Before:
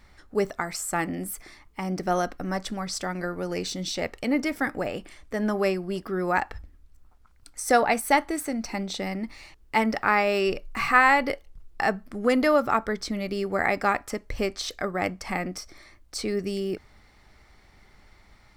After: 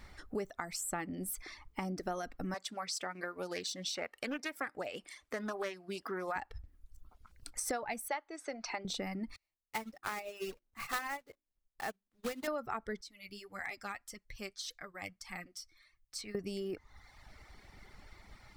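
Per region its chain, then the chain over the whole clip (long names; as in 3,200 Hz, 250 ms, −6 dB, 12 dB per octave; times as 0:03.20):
0:02.54–0:06.36: high-pass filter 690 Hz 6 dB per octave + highs frequency-modulated by the lows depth 0.25 ms
0:08.08–0:08.85: low-pass filter 9,200 Hz + three-way crossover with the lows and the highs turned down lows −23 dB, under 400 Hz, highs −14 dB, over 5,800 Hz
0:09.36–0:12.48: one scale factor per block 3 bits + mains-hum notches 50/100/150/200/250/300/350/400 Hz + expander for the loud parts 2.5 to 1, over −36 dBFS
0:13.01–0:16.35: guitar amp tone stack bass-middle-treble 5-5-5 + flanger 1.7 Hz, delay 5.1 ms, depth 5.5 ms, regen +30% + hard clipping −28.5 dBFS
whole clip: reverb reduction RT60 0.83 s; downward compressor 5 to 1, threshold −38 dBFS; level +1.5 dB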